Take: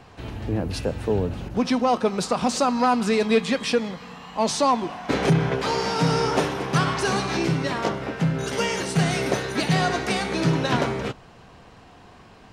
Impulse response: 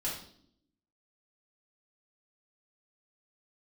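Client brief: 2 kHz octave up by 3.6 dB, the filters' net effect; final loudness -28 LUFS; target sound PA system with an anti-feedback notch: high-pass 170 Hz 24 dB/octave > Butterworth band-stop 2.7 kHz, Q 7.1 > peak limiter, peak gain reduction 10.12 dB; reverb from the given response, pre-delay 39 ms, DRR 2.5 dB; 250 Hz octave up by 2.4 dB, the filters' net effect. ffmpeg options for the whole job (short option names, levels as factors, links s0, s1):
-filter_complex "[0:a]equalizer=f=250:t=o:g=4,equalizer=f=2000:t=o:g=5,asplit=2[s0][s1];[1:a]atrim=start_sample=2205,adelay=39[s2];[s1][s2]afir=irnorm=-1:irlink=0,volume=0.501[s3];[s0][s3]amix=inputs=2:normalize=0,highpass=f=170:w=0.5412,highpass=f=170:w=1.3066,asuperstop=centerf=2700:order=8:qfactor=7.1,volume=0.631,alimiter=limit=0.112:level=0:latency=1"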